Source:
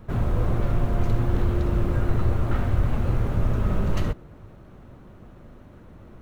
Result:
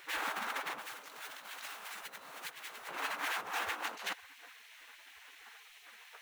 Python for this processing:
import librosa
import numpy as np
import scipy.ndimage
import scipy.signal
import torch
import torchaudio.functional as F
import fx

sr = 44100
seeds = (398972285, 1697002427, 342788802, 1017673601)

y = fx.spec_gate(x, sr, threshold_db=-30, keep='weak')
y = fx.high_shelf(y, sr, hz=2500.0, db=12.0, at=(0.8, 2.87), fade=0.02)
y = fx.over_compress(y, sr, threshold_db=-47.0, ratio=-0.5)
y = F.gain(torch.from_numpy(y), 6.5).numpy()